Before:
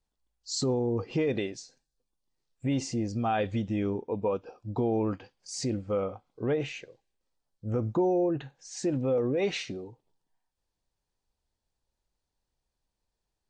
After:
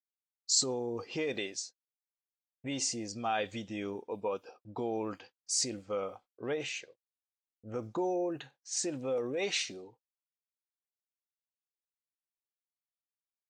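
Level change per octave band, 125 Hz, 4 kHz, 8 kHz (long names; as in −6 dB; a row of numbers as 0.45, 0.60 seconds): −14.5, +4.0, +7.5 decibels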